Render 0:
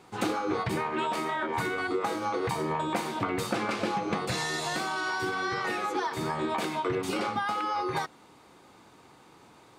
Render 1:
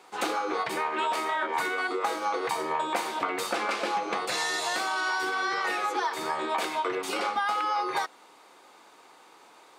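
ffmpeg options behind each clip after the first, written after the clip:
-af "highpass=480,volume=1.41"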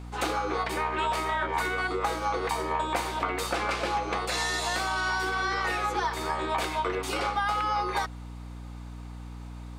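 -af "aeval=exprs='val(0)+0.0112*(sin(2*PI*60*n/s)+sin(2*PI*2*60*n/s)/2+sin(2*PI*3*60*n/s)/3+sin(2*PI*4*60*n/s)/4+sin(2*PI*5*60*n/s)/5)':c=same"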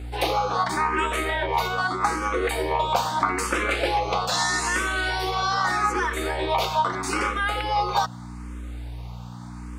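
-filter_complex "[0:a]asplit=2[s0][s1];[s1]afreqshift=0.8[s2];[s0][s2]amix=inputs=2:normalize=1,volume=2.51"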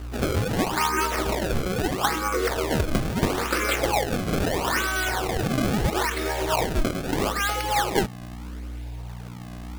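-af "acrusher=samples=27:mix=1:aa=0.000001:lfo=1:lforange=43.2:lforate=0.76"

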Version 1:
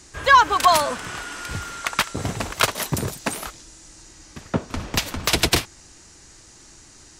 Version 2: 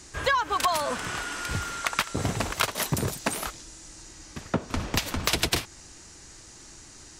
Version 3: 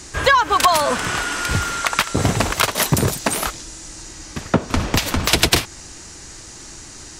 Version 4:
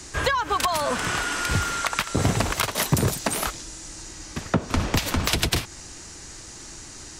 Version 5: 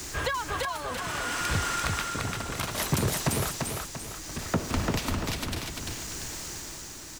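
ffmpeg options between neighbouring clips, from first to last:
-af "acompressor=threshold=0.0891:ratio=10"
-af "alimiter=level_in=3.55:limit=0.891:release=50:level=0:latency=1,volume=0.891"
-filter_complex "[0:a]acrossover=split=210[s0][s1];[s1]acompressor=threshold=0.141:ratio=6[s2];[s0][s2]amix=inputs=2:normalize=0,volume=0.708"
-af "aeval=exprs='val(0)+0.5*0.0335*sgn(val(0))':c=same,tremolo=f=0.65:d=0.64,aecho=1:1:343|686|1029|1372|1715:0.708|0.297|0.125|0.0525|0.022,volume=0.501"

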